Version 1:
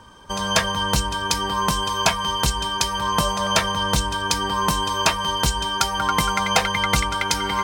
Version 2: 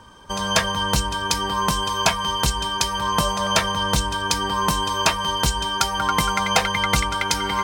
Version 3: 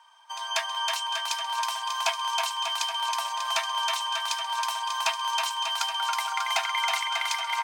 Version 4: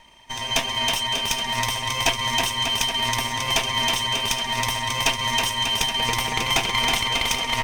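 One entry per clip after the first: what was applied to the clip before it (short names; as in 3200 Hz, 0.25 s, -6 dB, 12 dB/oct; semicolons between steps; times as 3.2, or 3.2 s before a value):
nothing audible
rippled Chebyshev high-pass 650 Hz, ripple 6 dB; on a send: bouncing-ball echo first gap 0.32 s, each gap 0.85×, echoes 5; on the sum: gain -5.5 dB
minimum comb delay 0.35 ms; gain +7 dB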